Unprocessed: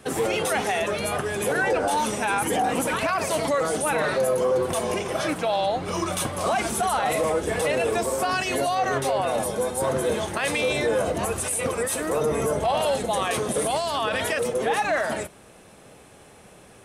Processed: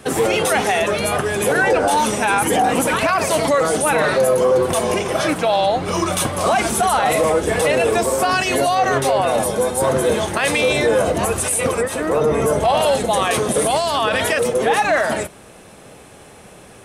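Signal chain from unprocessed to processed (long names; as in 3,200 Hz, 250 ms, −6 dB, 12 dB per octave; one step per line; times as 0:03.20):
0:11.80–0:12.45: high-shelf EQ 3,700 Hz → 7,300 Hz −12 dB
level +7 dB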